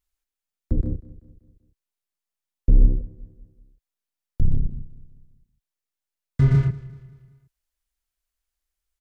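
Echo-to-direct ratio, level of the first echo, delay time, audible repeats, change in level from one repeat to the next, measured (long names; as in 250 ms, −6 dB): −17.5 dB, −18.5 dB, 192 ms, 3, −6.5 dB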